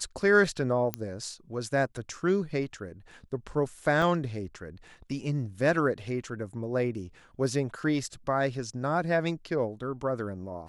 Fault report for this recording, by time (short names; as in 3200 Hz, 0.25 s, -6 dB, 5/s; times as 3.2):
0.94 pop -13 dBFS
4.02 gap 3 ms